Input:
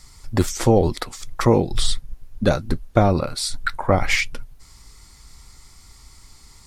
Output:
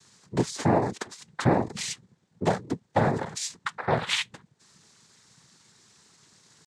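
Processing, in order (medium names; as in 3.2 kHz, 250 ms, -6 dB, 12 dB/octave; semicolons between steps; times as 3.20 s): pitch shift +1 st; noise-vocoded speech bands 6; trim -6 dB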